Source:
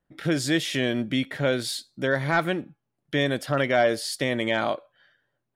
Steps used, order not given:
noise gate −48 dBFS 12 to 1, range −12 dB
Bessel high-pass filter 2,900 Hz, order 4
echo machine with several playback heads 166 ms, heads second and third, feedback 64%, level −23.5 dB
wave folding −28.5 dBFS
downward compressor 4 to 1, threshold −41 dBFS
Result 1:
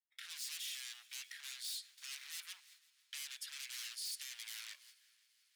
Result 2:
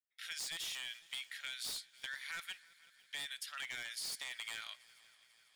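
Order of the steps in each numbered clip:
wave folding, then echo machine with several playback heads, then noise gate, then downward compressor, then Bessel high-pass filter
Bessel high-pass filter, then wave folding, then downward compressor, then noise gate, then echo machine with several playback heads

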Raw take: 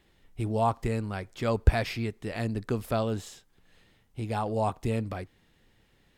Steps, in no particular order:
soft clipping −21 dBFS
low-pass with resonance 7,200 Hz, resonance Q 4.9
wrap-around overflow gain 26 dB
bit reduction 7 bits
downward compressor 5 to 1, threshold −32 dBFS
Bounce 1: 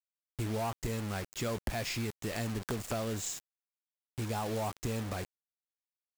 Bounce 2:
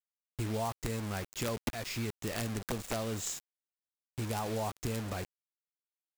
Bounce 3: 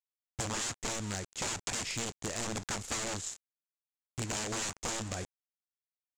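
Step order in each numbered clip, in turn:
low-pass with resonance, then soft clipping, then downward compressor, then bit reduction, then wrap-around overflow
downward compressor, then soft clipping, then low-pass with resonance, then wrap-around overflow, then bit reduction
wrap-around overflow, then bit reduction, then low-pass with resonance, then downward compressor, then soft clipping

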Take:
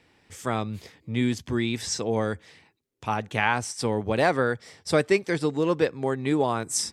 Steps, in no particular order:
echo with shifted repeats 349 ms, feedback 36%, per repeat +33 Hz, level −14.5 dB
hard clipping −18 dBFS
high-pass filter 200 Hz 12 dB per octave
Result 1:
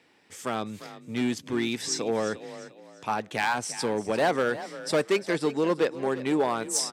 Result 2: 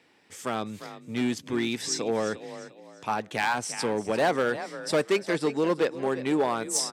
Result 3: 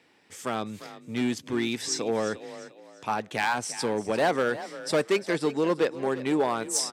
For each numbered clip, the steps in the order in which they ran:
hard clipping, then echo with shifted repeats, then high-pass filter
echo with shifted repeats, then hard clipping, then high-pass filter
hard clipping, then high-pass filter, then echo with shifted repeats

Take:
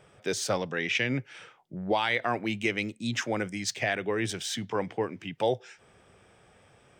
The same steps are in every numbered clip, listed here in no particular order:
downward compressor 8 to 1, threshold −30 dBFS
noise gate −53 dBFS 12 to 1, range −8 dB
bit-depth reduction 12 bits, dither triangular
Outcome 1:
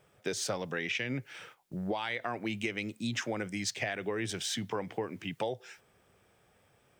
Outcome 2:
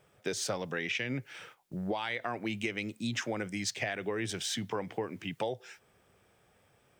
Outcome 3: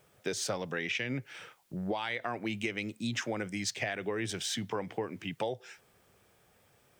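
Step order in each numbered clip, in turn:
bit-depth reduction, then noise gate, then downward compressor
bit-depth reduction, then downward compressor, then noise gate
noise gate, then bit-depth reduction, then downward compressor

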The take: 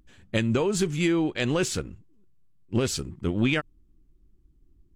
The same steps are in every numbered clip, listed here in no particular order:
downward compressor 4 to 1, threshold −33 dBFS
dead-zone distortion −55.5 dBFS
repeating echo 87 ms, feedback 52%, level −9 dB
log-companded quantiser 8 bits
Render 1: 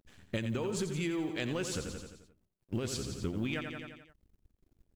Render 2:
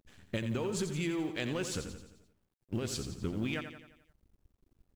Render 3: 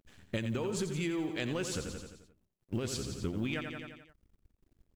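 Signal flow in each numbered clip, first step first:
dead-zone distortion, then log-companded quantiser, then repeating echo, then downward compressor
downward compressor, then dead-zone distortion, then repeating echo, then log-companded quantiser
log-companded quantiser, then dead-zone distortion, then repeating echo, then downward compressor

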